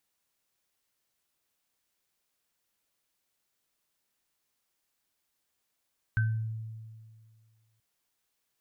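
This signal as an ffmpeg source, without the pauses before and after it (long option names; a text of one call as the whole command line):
ffmpeg -f lavfi -i "aevalsrc='0.075*pow(10,-3*t/1.99)*sin(2*PI*111*t)+0.0422*pow(10,-3*t/0.35)*sin(2*PI*1540*t)':duration=1.63:sample_rate=44100" out.wav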